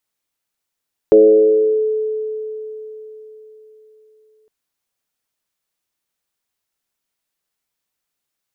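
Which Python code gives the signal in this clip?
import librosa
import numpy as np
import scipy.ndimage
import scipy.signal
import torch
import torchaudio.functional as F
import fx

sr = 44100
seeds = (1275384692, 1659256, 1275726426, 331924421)

y = fx.fm2(sr, length_s=3.36, level_db=-4, carrier_hz=433.0, ratio=0.25, index=0.76, index_s=0.74, decay_s=4.06, shape='linear')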